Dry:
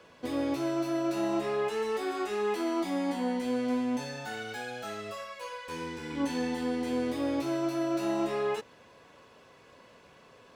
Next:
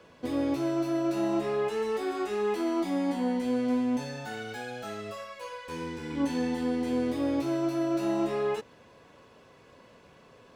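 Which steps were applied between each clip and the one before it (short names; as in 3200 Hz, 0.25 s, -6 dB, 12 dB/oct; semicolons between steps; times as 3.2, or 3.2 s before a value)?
low shelf 480 Hz +5.5 dB; gain -1.5 dB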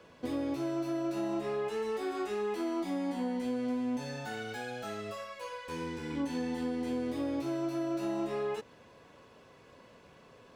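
compressor 3:1, threshold -30 dBFS, peak gain reduction 5.5 dB; gain -1.5 dB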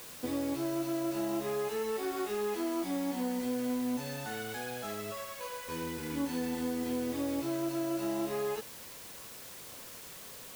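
requantised 8-bit, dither triangular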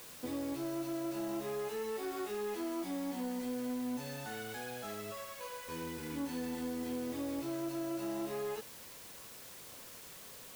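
soft clip -26 dBFS, distortion -23 dB; gain -3.5 dB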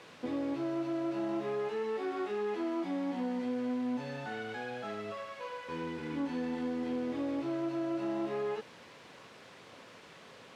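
BPF 120–3000 Hz; gain +4 dB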